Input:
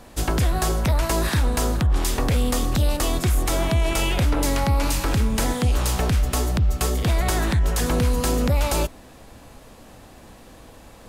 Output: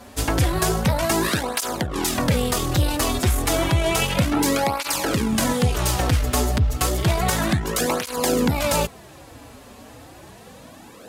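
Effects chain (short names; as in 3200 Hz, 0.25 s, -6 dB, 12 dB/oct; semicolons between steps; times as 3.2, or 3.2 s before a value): HPF 98 Hz 6 dB/oct; tube stage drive 15 dB, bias 0.5; tape flanging out of phase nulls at 0.31 Hz, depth 6.4 ms; gain +8.5 dB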